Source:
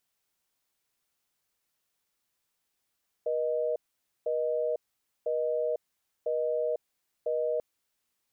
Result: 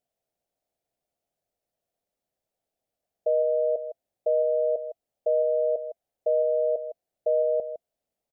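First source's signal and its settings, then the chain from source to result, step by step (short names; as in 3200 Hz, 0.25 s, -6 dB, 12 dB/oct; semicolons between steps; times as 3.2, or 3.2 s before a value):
call progress tone busy tone, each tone -29 dBFS 4.34 s
EQ curve 380 Hz 0 dB, 670 Hz +10 dB, 1000 Hz -11 dB; on a send: echo 0.159 s -12 dB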